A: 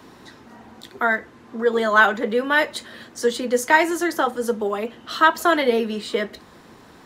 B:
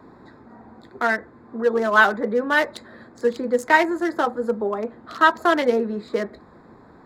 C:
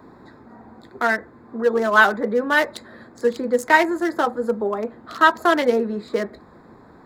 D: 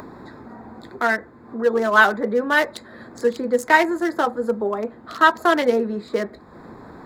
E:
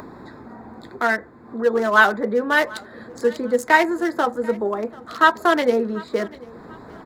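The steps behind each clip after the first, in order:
local Wiener filter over 15 samples
treble shelf 9.3 kHz +6.5 dB; trim +1 dB
upward compressor, threshold -32 dBFS
feedback delay 739 ms, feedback 34%, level -22.5 dB

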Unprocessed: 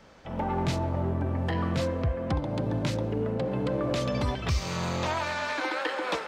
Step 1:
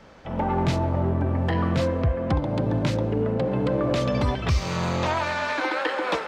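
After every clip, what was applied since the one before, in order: treble shelf 4.4 kHz -6.5 dB; trim +5 dB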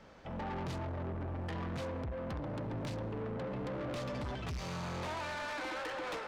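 saturation -29 dBFS, distortion -7 dB; trim -7.5 dB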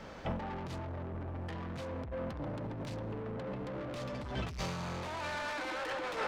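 compressor with a negative ratio -42 dBFS, ratio -0.5; trim +4.5 dB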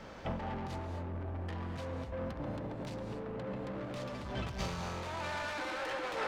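gated-style reverb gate 270 ms rising, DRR 6.5 dB; trim -1 dB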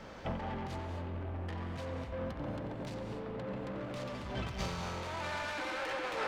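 band-passed feedback delay 90 ms, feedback 85%, band-pass 2.4 kHz, level -9 dB

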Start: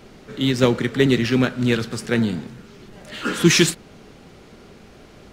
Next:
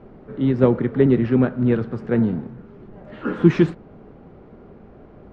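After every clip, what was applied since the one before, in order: low-pass 1 kHz 12 dB/octave; trim +1.5 dB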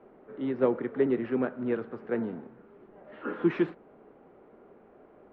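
three-band isolator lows -18 dB, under 270 Hz, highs -23 dB, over 3.4 kHz; trim -6.5 dB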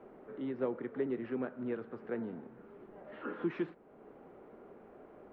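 compression 1.5:1, threshold -51 dBFS, peak gain reduction 11.5 dB; trim +1 dB

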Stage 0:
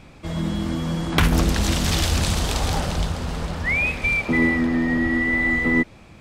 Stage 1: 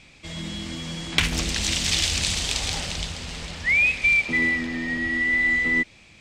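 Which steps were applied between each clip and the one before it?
high-order bell 4.1 kHz +13 dB 2.5 oct; trim -9.5 dB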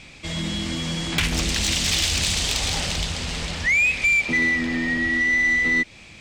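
in parallel at +1 dB: compression, threshold -28 dBFS, peak gain reduction 12.5 dB; on the sum: saturation -13.5 dBFS, distortion -17 dB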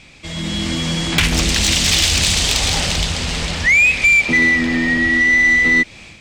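level rider gain up to 7 dB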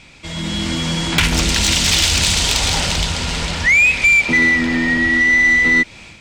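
small resonant body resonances 950/1400 Hz, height 8 dB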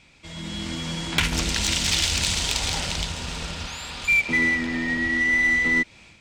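spectral replace 3.18–4.06 s, 720–5100 Hz before; Chebyshev shaper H 3 -14 dB, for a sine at -4 dBFS; trim -3 dB

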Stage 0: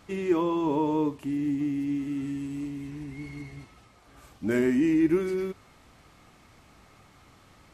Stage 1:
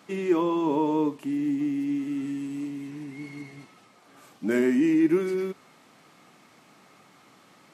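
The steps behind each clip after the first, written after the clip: high-pass 160 Hz 24 dB/octave; trim +1.5 dB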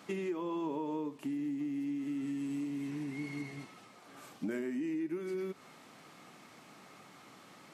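compression 10:1, threshold -34 dBFS, peak gain reduction 17 dB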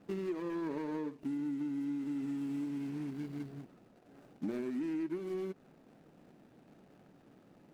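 median filter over 41 samples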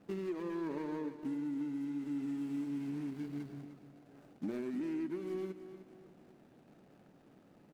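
feedback delay 304 ms, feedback 38%, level -12 dB; trim -1.5 dB

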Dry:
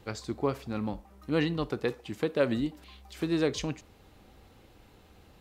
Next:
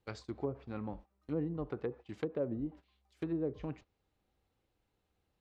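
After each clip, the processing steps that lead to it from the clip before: low-pass that closes with the level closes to 530 Hz, closed at -24.5 dBFS; gate -43 dBFS, range -17 dB; peaking EQ 230 Hz -3 dB 0.41 oct; trim -6.5 dB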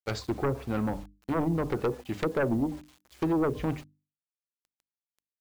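sine folder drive 10 dB, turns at -22 dBFS; bit crusher 9-bit; hum notches 50/100/150/200/250/300 Hz

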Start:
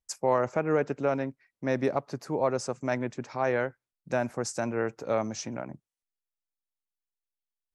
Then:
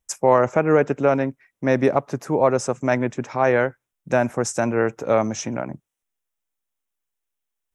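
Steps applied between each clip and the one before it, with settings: peaking EQ 4.5 kHz -12.5 dB 0.29 oct; trim +9 dB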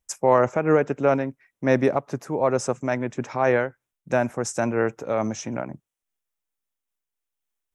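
random flutter of the level, depth 55%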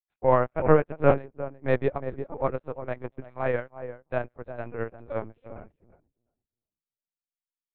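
filtered feedback delay 350 ms, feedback 21%, low-pass 980 Hz, level -3 dB; LPC vocoder at 8 kHz pitch kept; upward expansion 2.5:1, over -37 dBFS; trim +1 dB

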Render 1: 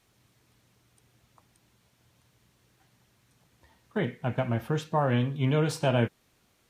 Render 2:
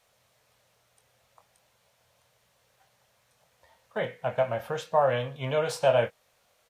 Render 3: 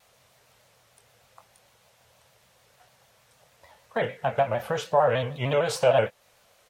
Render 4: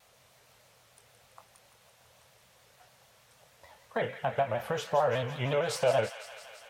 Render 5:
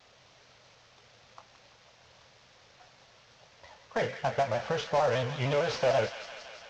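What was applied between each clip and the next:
resonant low shelf 420 Hz -8.5 dB, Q 3; doubling 23 ms -9.5 dB
in parallel at +1 dB: compression, threshold -33 dBFS, peak gain reduction 15 dB; on the sum: vibrato with a chosen wave square 6.6 Hz, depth 100 cents
in parallel at +1 dB: compression, threshold -32 dBFS, peak gain reduction 16 dB; on the sum: feedback echo behind a high-pass 168 ms, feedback 74%, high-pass 1.4 kHz, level -9.5 dB; trim -7.5 dB
CVSD coder 32 kbps; saturation -21 dBFS, distortion -17 dB; trim +2.5 dB

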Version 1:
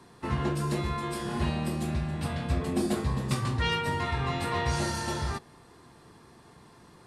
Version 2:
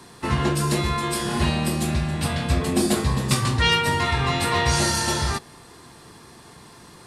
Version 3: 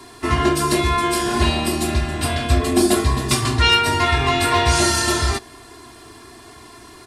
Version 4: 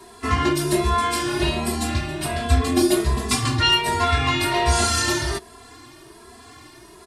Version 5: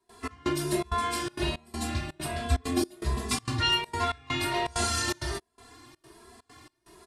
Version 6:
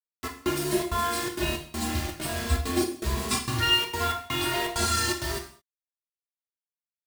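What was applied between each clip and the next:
treble shelf 2.4 kHz +8 dB; trim +6.5 dB
comb 2.9 ms, depth 88%; trim +2 dB
endless flanger 2.7 ms +1.3 Hz
trance gate ".xx..xxxx.xxxx" 164 bpm -24 dB; trim -7.5 dB
bit crusher 6-bit; reverberation, pre-delay 3 ms, DRR 2 dB

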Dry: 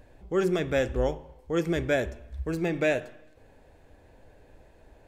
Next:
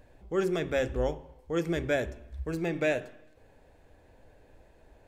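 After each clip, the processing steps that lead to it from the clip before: de-hum 45.3 Hz, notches 9; trim -2.5 dB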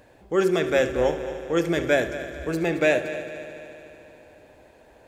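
high-pass 230 Hz 6 dB/octave; on a send: multi-head delay 74 ms, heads first and third, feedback 71%, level -14.5 dB; on the sum: trim +8 dB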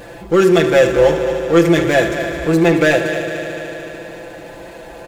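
power-law waveshaper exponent 0.7; comb 5.9 ms, depth 81%; trim +4 dB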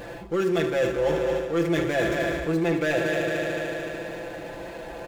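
median filter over 5 samples; reverse; compression 6:1, threshold -19 dBFS, peak gain reduction 12 dB; reverse; trim -2.5 dB

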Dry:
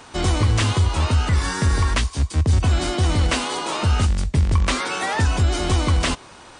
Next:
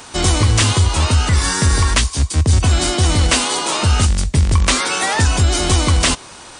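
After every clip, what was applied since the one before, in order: treble shelf 4.6 kHz +11 dB; trim +4 dB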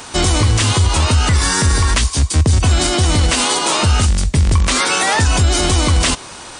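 peak limiter -9.5 dBFS, peak gain reduction 7.5 dB; trim +4 dB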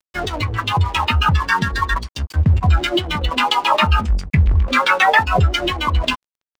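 LFO low-pass saw down 7.4 Hz 350–3400 Hz; spectral noise reduction 14 dB; crossover distortion -37 dBFS; trim +2.5 dB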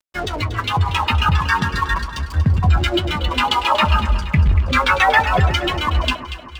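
echo whose repeats swap between lows and highs 118 ms, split 1.4 kHz, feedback 72%, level -9 dB; trim -1 dB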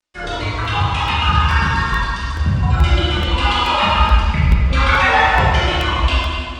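reverberation RT60 1.6 s, pre-delay 12 ms, DRR -8.5 dB; resampled via 22.05 kHz; crackling interface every 0.43 s, samples 64, repeat, from 0.65 s; trim -7 dB

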